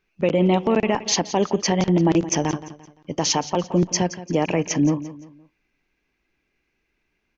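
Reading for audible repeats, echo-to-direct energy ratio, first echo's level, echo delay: 3, -14.5 dB, -15.0 dB, 0.172 s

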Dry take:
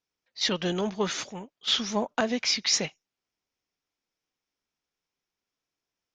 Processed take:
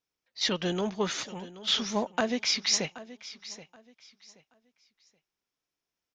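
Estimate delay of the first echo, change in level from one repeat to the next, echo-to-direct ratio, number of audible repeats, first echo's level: 0.777 s, -11.5 dB, -16.0 dB, 2, -16.5 dB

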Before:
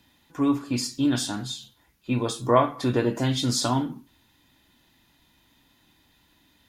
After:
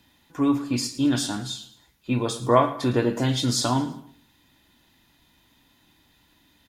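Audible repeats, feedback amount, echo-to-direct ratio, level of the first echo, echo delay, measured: 3, 37%, -15.0 dB, -15.5 dB, 0.109 s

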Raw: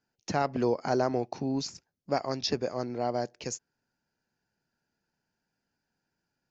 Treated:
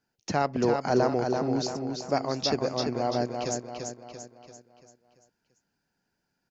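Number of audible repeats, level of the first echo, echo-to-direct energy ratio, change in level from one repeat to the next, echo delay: 5, -5.0 dB, -4.0 dB, -6.5 dB, 0.34 s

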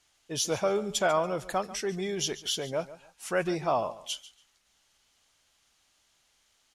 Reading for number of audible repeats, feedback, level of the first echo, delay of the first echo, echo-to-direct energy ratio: 2, 22%, -16.5 dB, 0.142 s, -16.5 dB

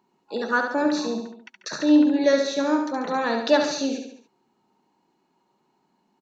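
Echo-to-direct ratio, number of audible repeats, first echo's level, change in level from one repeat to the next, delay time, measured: -4.5 dB, 4, -6.0 dB, -6.0 dB, 70 ms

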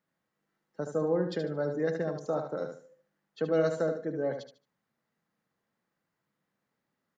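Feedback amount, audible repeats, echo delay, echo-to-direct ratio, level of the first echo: 25%, 3, 74 ms, -6.5 dB, -7.0 dB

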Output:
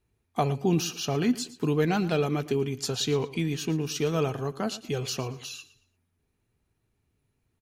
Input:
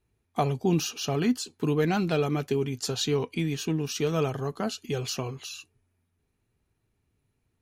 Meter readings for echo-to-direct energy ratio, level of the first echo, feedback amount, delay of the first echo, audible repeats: -16.5 dB, -17.0 dB, 30%, 0.114 s, 2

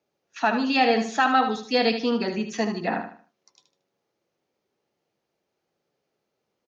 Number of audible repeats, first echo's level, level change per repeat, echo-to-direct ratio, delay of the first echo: 3, -8.5 dB, -10.0 dB, -8.0 dB, 76 ms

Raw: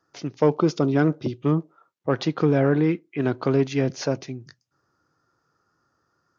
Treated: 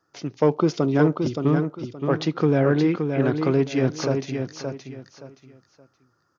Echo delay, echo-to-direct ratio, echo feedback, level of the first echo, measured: 0.572 s, -5.5 dB, 26%, -6.0 dB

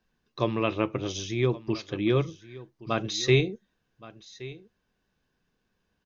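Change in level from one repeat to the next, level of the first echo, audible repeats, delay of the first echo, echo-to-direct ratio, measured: no steady repeat, -18.5 dB, 1, 1.121 s, -18.5 dB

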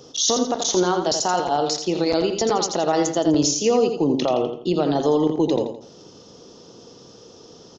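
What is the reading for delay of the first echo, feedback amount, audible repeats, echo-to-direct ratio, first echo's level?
84 ms, 35%, 4, -6.5 dB, -7.0 dB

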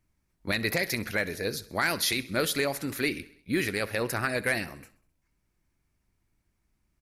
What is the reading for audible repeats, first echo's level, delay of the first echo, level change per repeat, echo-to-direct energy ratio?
4, -20.0 dB, 65 ms, -4.5 dB, -18.0 dB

